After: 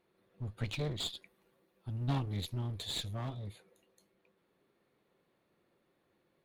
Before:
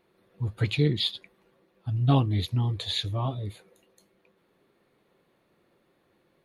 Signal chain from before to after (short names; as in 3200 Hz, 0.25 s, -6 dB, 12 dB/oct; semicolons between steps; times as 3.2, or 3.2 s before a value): 1.1–3.31 high shelf 7400 Hz +10 dB; one-sided clip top -34 dBFS; gain -7.5 dB